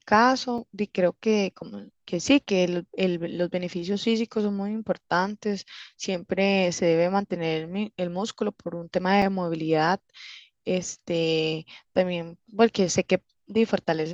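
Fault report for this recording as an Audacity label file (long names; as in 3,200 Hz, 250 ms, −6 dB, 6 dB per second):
0.580000	0.580000	drop-out 2.9 ms
9.220000	9.220000	drop-out 2.8 ms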